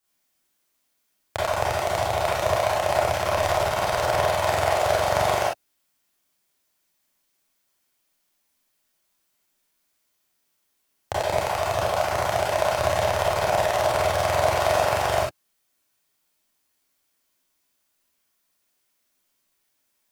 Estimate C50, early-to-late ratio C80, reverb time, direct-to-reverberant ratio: 0.0 dB, 6.5 dB, no single decay rate, -7.5 dB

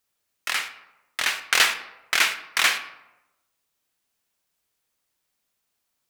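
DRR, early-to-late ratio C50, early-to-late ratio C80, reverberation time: 9.0 dB, 11.5 dB, 14.0 dB, 1.0 s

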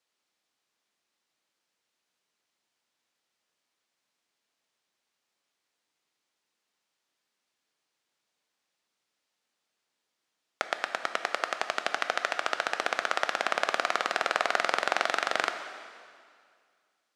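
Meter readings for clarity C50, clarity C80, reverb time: 8.5 dB, 9.5 dB, 2.1 s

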